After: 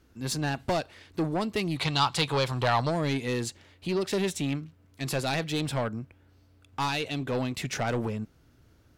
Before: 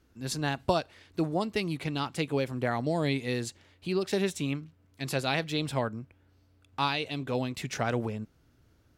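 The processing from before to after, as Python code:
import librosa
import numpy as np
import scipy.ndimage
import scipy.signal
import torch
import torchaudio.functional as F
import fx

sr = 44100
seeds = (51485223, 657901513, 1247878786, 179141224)

y = 10.0 ** (-26.0 / 20.0) * np.tanh(x / 10.0 ** (-26.0 / 20.0))
y = fx.graphic_eq(y, sr, hz=(125, 250, 1000, 4000, 8000), db=(5, -7, 10, 12, 3), at=(1.76, 2.89), fade=0.02)
y = y * 10.0 ** (4.0 / 20.0)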